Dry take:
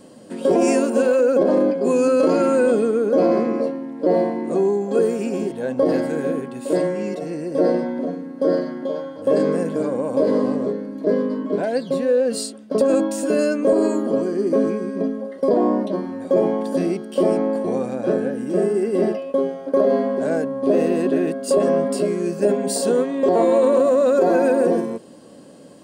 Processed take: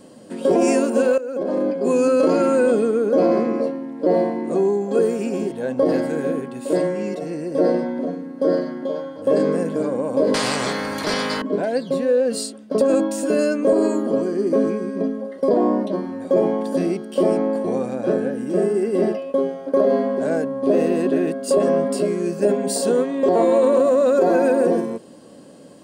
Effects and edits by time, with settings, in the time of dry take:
1.18–1.93 fade in, from -16.5 dB
10.34–11.42 spectral compressor 4:1

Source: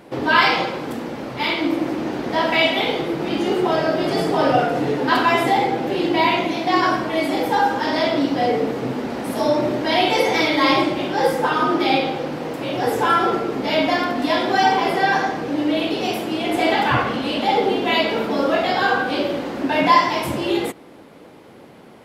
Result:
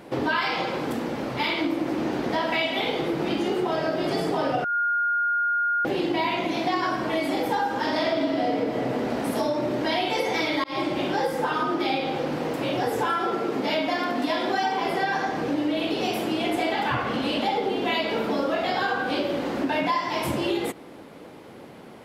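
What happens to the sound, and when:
4.64–5.85 bleep 1420 Hz -17.5 dBFS
7.9–8.56 reverb throw, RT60 2.3 s, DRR -2.5 dB
10.64–11.13 fade in equal-power
13.1–14.81 HPF 150 Hz
whole clip: compressor, threshold -22 dBFS

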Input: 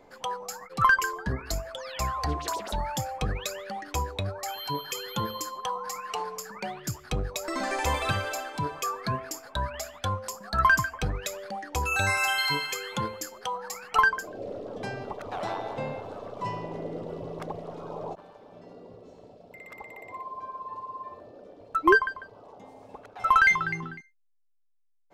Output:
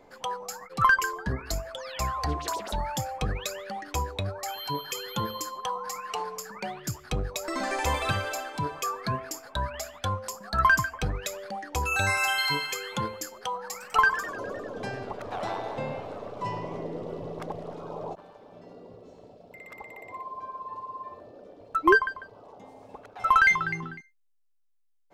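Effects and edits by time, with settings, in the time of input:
13.66–17.76 warbling echo 0.101 s, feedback 72%, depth 207 cents, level -14.5 dB

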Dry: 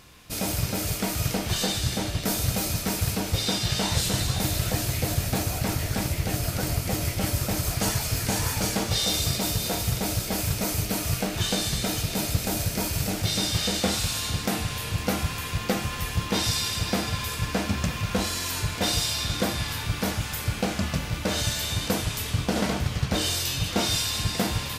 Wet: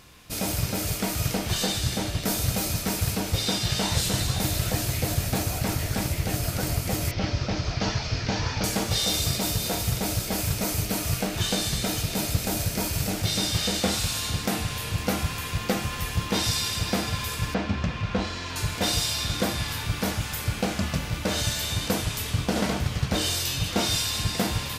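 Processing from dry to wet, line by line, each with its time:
7.11–8.64 steep low-pass 5800 Hz 48 dB/oct
17.54–18.56 air absorption 160 m

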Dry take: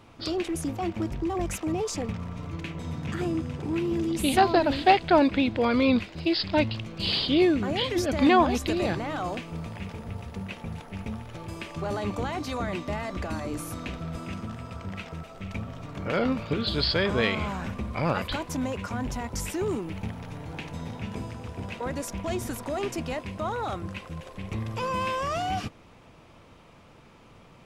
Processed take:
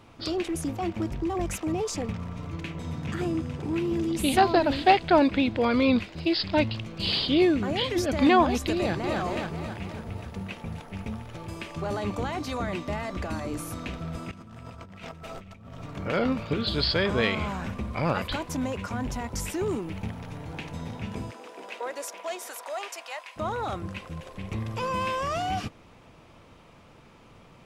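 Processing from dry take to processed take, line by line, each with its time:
8.76–9.19 echo throw 0.27 s, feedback 55%, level -3.5 dB
14.31–15.79 negative-ratio compressor -44 dBFS
21.3–23.36 HPF 300 Hz -> 790 Hz 24 dB/oct

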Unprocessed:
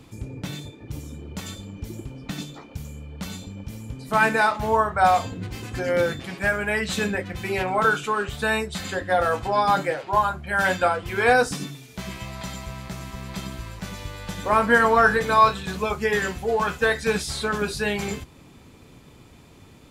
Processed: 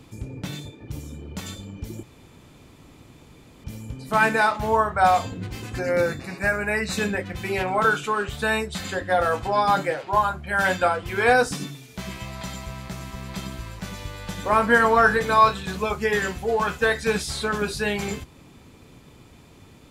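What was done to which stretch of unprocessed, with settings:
2.03–3.64 room tone
5.78–6.98 Butterworth band-stop 3200 Hz, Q 3.6

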